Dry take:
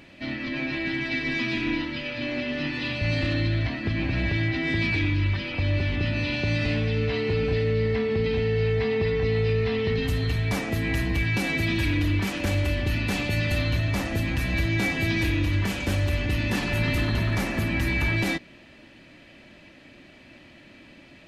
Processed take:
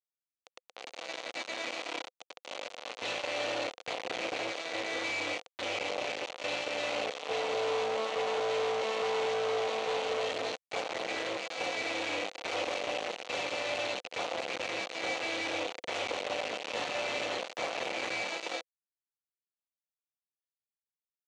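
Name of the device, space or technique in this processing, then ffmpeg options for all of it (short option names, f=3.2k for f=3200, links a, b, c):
hand-held game console: -filter_complex "[0:a]acrossover=split=230[a][b];[b]adelay=240[c];[a][c]amix=inputs=2:normalize=0,acrusher=bits=3:mix=0:aa=0.000001,highpass=460,equalizer=f=510:t=q:w=4:g=10,equalizer=f=730:t=q:w=4:g=6,equalizer=f=1.7k:t=q:w=4:g=-6,equalizer=f=5.1k:t=q:w=4:g=-7,lowpass=f=5.8k:w=0.5412,lowpass=f=5.8k:w=1.3066,volume=-8dB"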